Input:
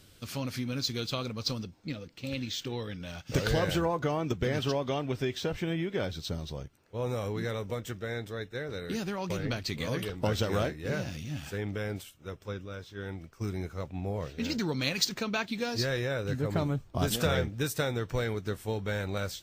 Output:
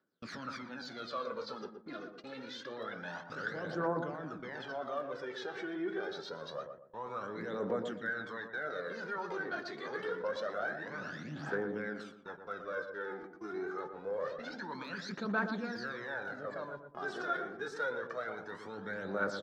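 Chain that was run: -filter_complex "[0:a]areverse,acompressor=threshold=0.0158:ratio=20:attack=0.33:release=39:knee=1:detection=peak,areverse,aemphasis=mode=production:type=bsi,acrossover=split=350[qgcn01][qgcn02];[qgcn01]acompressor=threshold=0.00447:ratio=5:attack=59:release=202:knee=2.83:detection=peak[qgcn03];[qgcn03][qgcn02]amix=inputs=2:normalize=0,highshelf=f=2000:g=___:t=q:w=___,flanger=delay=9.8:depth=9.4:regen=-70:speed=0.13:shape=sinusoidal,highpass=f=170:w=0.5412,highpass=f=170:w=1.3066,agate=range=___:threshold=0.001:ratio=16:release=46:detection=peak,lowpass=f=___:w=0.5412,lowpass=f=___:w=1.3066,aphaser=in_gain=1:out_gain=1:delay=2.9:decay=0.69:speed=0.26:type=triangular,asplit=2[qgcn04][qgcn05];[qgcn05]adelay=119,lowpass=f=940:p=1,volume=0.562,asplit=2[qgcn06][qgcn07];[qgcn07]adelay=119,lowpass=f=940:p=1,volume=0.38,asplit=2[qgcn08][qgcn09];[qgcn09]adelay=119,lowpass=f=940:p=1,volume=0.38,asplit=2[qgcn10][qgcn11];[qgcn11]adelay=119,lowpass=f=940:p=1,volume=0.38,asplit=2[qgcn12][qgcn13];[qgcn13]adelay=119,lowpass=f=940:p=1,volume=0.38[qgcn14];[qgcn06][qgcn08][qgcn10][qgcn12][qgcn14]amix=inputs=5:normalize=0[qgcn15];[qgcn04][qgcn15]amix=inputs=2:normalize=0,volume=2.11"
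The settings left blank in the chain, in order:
-8.5, 3, 0.0398, 4400, 4400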